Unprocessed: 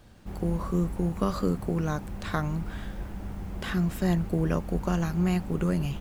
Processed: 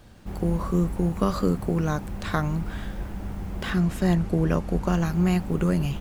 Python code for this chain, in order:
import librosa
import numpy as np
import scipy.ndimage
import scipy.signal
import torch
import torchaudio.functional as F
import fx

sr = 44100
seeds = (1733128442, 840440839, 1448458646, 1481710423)

y = fx.resample_linear(x, sr, factor=2, at=(3.62, 5.06))
y = y * 10.0 ** (3.5 / 20.0)